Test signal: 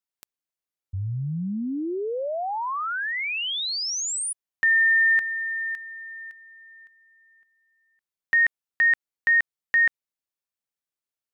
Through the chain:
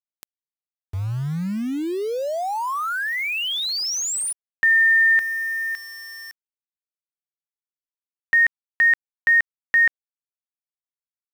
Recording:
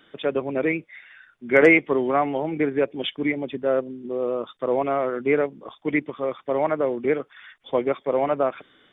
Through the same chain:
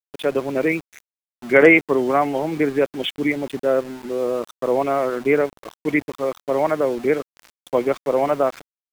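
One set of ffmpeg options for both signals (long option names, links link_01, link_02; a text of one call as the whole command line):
ffmpeg -i in.wav -af "aeval=exprs='val(0)*gte(abs(val(0)),0.0141)':channel_layout=same,volume=3dB" out.wav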